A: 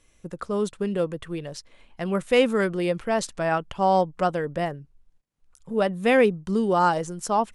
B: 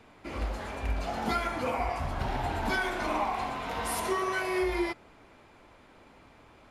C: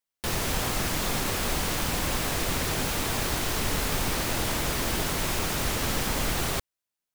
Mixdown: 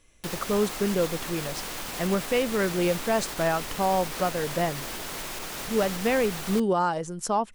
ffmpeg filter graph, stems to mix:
-filter_complex "[0:a]volume=1dB[a];[2:a]equalizer=f=72:w=0.43:g=-12,alimiter=limit=-22dB:level=0:latency=1:release=102,volume=-3dB[b];[a]alimiter=limit=-15.5dB:level=0:latency=1:release=414,volume=0dB[c];[b][c]amix=inputs=2:normalize=0"

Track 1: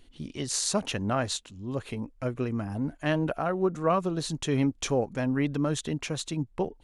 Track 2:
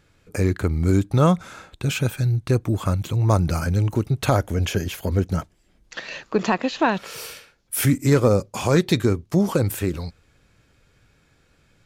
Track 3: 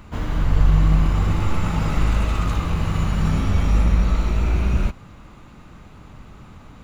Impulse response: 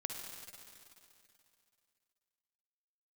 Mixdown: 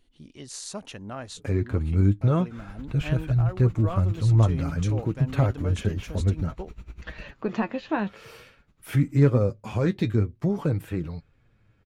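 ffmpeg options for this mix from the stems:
-filter_complex "[0:a]volume=-9dB[a];[1:a]bass=f=250:g=5,treble=f=4k:g=-15,flanger=delay=6.2:depth=3.5:regen=44:speed=0.51:shape=sinusoidal,adynamicequalizer=threshold=0.0112:dfrequency=940:dqfactor=1.1:tfrequency=940:tqfactor=1.1:attack=5:release=100:ratio=0.375:range=2.5:mode=cutabove:tftype=bell,adelay=1100,volume=-3dB[b];[2:a]equalizer=f=690:w=0.96:g=-8.5,aeval=exprs='val(0)*pow(10,-21*(0.5-0.5*cos(2*PI*10*n/s))/20)':c=same,adelay=2400,volume=-16.5dB[c];[a][b][c]amix=inputs=3:normalize=0"

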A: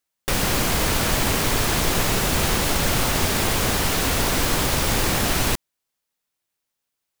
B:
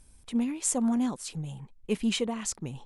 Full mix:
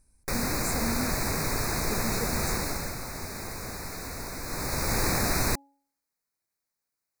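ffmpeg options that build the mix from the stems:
-filter_complex "[0:a]bandreject=f=278.5:t=h:w=4,bandreject=f=557:t=h:w=4,bandreject=f=835.5:t=h:w=4,volume=3.5dB,afade=t=out:st=2.55:d=0.42:silence=0.398107,afade=t=in:st=4.43:d=0.6:silence=0.281838[a];[1:a]volume=-8dB[b];[a][b]amix=inputs=2:normalize=0,asuperstop=centerf=3100:order=8:qfactor=2.3"

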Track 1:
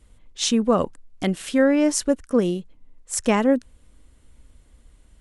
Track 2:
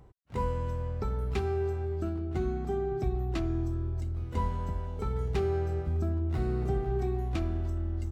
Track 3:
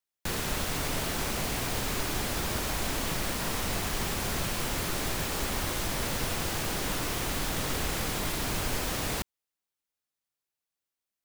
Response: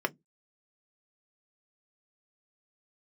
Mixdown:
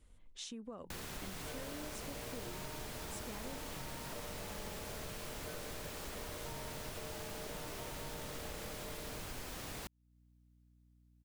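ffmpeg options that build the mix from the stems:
-filter_complex "[0:a]bandreject=f=60:t=h:w=6,bandreject=f=120:t=h:w=6,bandreject=f=180:t=h:w=6,acompressor=threshold=-26dB:ratio=6,volume=-9.5dB[a];[1:a]aeval=exprs='val(0)*sin(2*PI*530*n/s)':c=same,adelay=1100,volume=-7.5dB[b];[2:a]aeval=exprs='val(0)+0.000794*(sin(2*PI*60*n/s)+sin(2*PI*2*60*n/s)/2+sin(2*PI*3*60*n/s)/3+sin(2*PI*4*60*n/s)/4+sin(2*PI*5*60*n/s)/5)':c=same,adelay=650,volume=-3.5dB[c];[a][b][c]amix=inputs=3:normalize=0,acompressor=threshold=-51dB:ratio=2"

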